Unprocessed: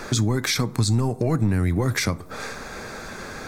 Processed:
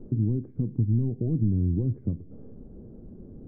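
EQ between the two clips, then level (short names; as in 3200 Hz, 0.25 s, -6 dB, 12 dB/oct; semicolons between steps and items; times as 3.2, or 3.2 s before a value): ladder low-pass 420 Hz, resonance 25%; low shelf 250 Hz +7.5 dB; -3.5 dB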